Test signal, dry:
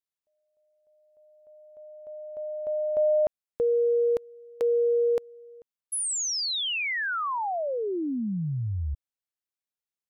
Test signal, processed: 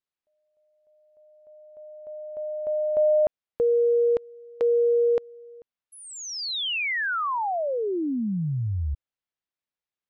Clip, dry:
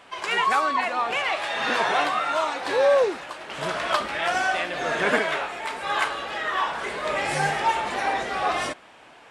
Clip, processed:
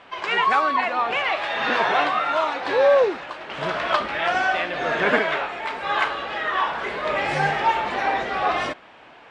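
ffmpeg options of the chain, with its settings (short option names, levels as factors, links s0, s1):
-af "lowpass=3900,volume=1.33"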